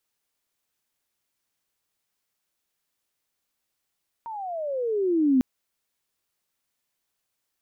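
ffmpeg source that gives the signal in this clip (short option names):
-f lavfi -i "aevalsrc='pow(10,(-15.5+17*(t/1.15-1))/20)*sin(2*PI*938*1.15/(-23*log(2)/12)*(exp(-23*log(2)/12*t/1.15)-1))':d=1.15:s=44100"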